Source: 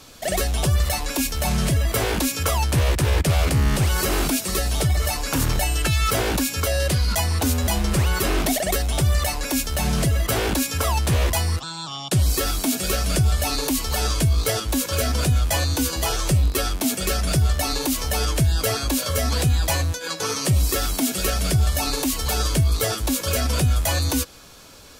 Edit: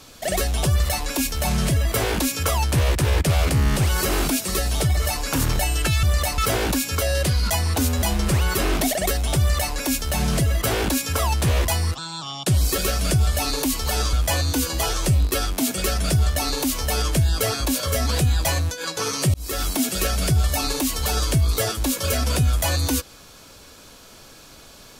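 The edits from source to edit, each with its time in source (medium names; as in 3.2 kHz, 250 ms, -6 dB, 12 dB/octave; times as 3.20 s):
9.04–9.39 s: copy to 6.03 s
12.43–12.83 s: delete
14.18–15.36 s: delete
20.57–20.88 s: fade in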